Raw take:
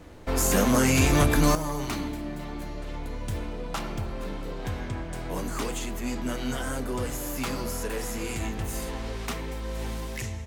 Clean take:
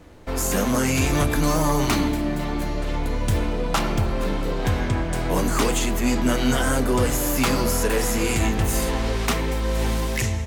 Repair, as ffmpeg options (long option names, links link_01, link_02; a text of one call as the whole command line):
ffmpeg -i in.wav -af "asetnsamples=nb_out_samples=441:pad=0,asendcmd='1.55 volume volume 10dB',volume=0dB" out.wav